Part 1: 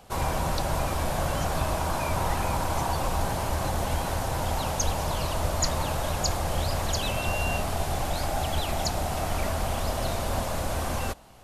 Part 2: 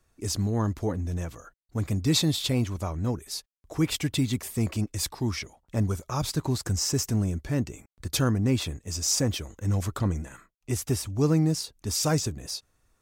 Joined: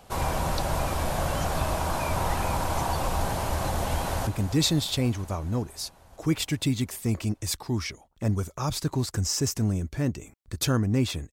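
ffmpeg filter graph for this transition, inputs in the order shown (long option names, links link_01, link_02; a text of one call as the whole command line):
ffmpeg -i cue0.wav -i cue1.wav -filter_complex "[0:a]apad=whole_dur=11.32,atrim=end=11.32,atrim=end=4.272[link_01];[1:a]atrim=start=1.788:end=8.84[link_02];[link_01][link_02]acrossfade=duration=0.004:curve1=hsin:curve2=hsin,asplit=2[link_03][link_04];[link_04]afade=type=in:start_time=3.96:duration=0.01,afade=type=out:start_time=4.27:duration=0.01,aecho=0:1:270|540|810|1080|1350|1620|1890|2160|2430|2700|2970|3240:0.281838|0.211379|0.158534|0.118901|0.0891754|0.0668815|0.0501612|0.0376209|0.0282157|0.0211617|0.0158713|0.0119035[link_05];[link_03][link_05]amix=inputs=2:normalize=0" out.wav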